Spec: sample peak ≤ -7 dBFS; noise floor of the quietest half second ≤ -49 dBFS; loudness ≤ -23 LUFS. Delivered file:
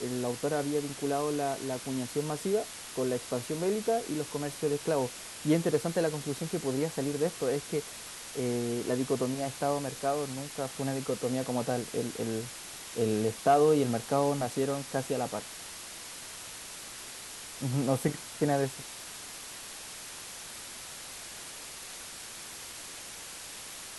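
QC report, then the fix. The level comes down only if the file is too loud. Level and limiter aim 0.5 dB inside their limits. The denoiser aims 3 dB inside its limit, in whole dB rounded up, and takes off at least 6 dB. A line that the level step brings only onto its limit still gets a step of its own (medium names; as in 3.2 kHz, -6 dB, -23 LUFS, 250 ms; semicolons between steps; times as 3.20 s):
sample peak -13.0 dBFS: pass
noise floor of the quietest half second -44 dBFS: fail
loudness -32.5 LUFS: pass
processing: noise reduction 8 dB, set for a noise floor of -44 dBFS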